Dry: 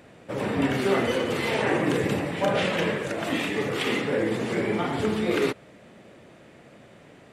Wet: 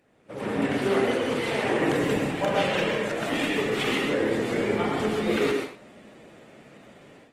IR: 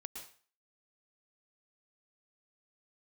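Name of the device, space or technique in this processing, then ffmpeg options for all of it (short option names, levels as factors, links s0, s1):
far-field microphone of a smart speaker: -filter_complex "[1:a]atrim=start_sample=2205[s0];[0:a][s0]afir=irnorm=-1:irlink=0,highpass=f=120:p=1,dynaudnorm=f=240:g=3:m=4.47,volume=0.398" -ar 48000 -c:a libopus -b:a 20k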